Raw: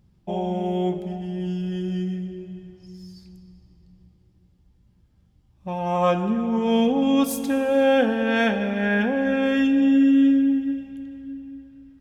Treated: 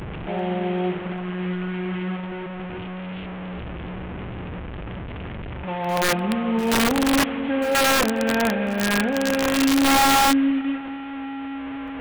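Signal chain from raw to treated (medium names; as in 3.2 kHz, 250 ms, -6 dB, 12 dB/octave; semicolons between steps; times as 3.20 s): one-bit delta coder 16 kbps, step -25.5 dBFS; bass shelf 85 Hz -2.5 dB; on a send: thinning echo 393 ms, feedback 58%, high-pass 550 Hz, level -13 dB; on the sum: integer overflow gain 13.5 dB; pre-echo 128 ms -18.5 dB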